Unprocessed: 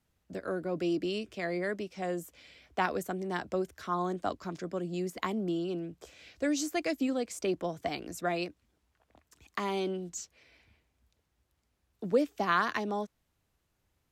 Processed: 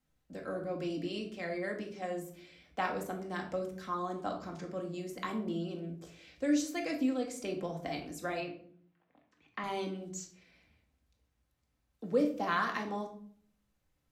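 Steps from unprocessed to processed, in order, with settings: 8.4–9.64 Chebyshev band-pass 170–2700 Hz, order 2; shoebox room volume 690 m³, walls furnished, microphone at 2.1 m; gain -6 dB

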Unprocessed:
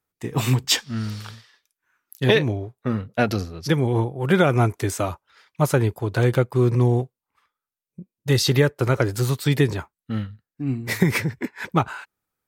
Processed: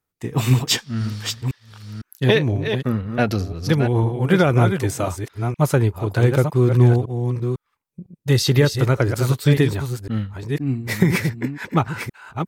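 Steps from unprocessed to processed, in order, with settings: reverse delay 0.504 s, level -7 dB; low shelf 200 Hz +4.5 dB

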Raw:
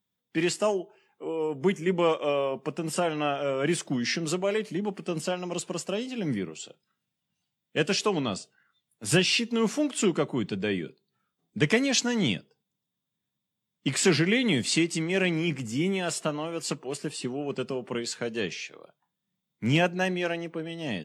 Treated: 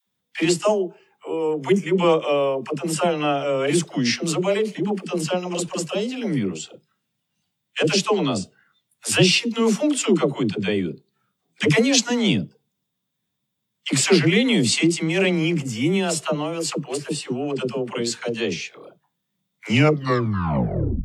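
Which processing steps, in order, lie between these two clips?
tape stop at the end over 1.40 s; dynamic EQ 1700 Hz, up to -5 dB, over -48 dBFS, Q 3.2; dispersion lows, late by 82 ms, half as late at 470 Hz; gain +6.5 dB

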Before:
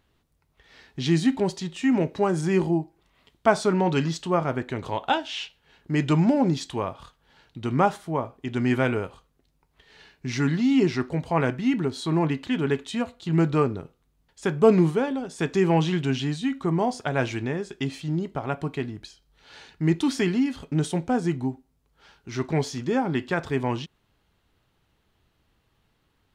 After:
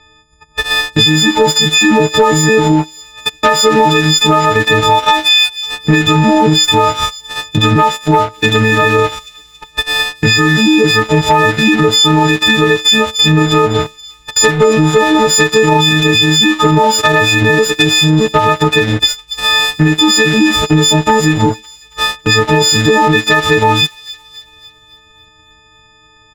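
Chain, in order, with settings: frequency quantiser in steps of 6 st; LPF 6000 Hz 24 dB/oct; comb 2.3 ms, depth 46%; compressor 5:1, threshold -27 dBFS, peak gain reduction 15.5 dB; transient shaper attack +12 dB, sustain -2 dB; sample leveller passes 2; on a send: thin delay 0.277 s, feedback 53%, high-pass 3900 Hz, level -20.5 dB; on the sum: maximiser +21 dB; gain -1 dB

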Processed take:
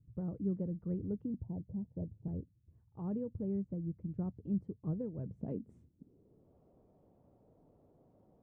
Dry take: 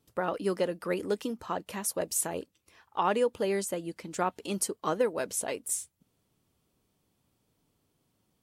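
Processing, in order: low-pass sweep 120 Hz -> 630 Hz, 5.21–6.57; 1.34–2.28 steep low-pass 950 Hz 96 dB/oct; gain +7 dB

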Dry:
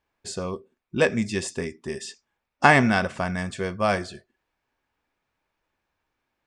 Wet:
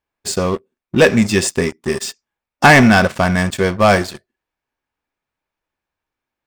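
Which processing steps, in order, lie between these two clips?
high shelf 6700 Hz +2.5 dB; sample leveller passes 3; gain +1 dB

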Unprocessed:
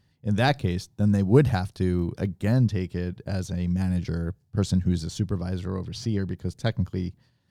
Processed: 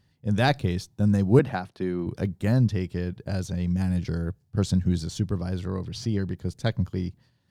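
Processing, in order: 1.39–2.07 three-band isolator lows -18 dB, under 180 Hz, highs -13 dB, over 3400 Hz

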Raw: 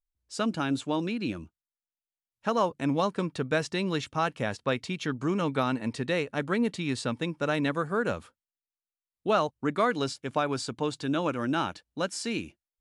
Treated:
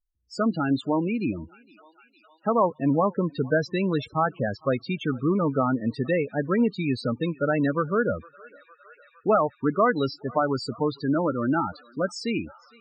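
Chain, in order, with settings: thinning echo 0.459 s, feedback 83%, high-pass 640 Hz, level -21 dB; loudest bins only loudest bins 16; gain +5 dB

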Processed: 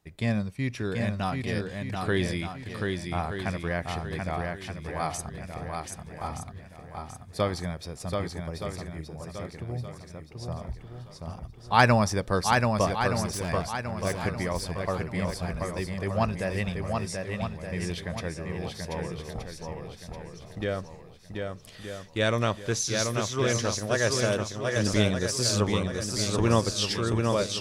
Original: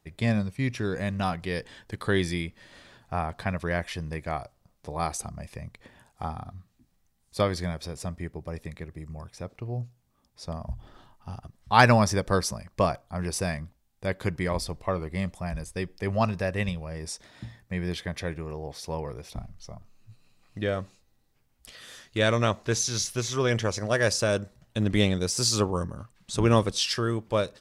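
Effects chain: 12.87–13.49 one-sided clip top -32 dBFS; swung echo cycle 1.222 s, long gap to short 1.5:1, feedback 33%, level -4 dB; gain -2 dB

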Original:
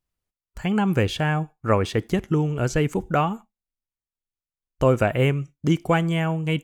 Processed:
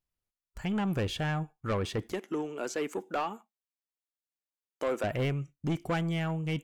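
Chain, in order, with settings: 2.12–5.04 HPF 270 Hz 24 dB/oct; soft clip -18.5 dBFS, distortion -11 dB; gain -6 dB

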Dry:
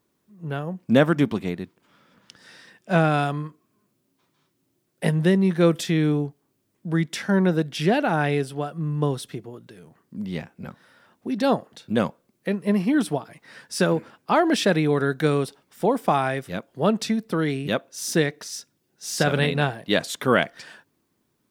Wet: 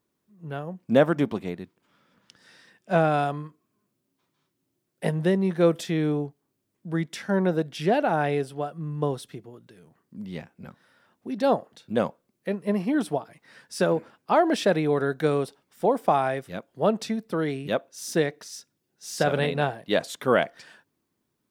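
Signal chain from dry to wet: dynamic EQ 630 Hz, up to +7 dB, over -33 dBFS, Q 0.85; gain -6 dB

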